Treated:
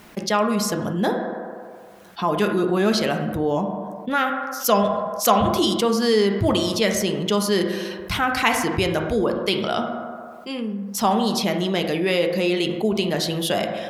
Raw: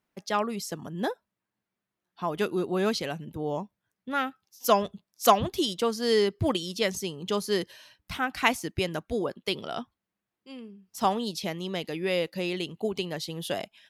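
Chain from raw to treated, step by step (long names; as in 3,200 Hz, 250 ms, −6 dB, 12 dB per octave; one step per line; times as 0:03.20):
on a send at −5 dB: convolution reverb RT60 1.1 s, pre-delay 5 ms
on the sum: envelope flattener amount 50%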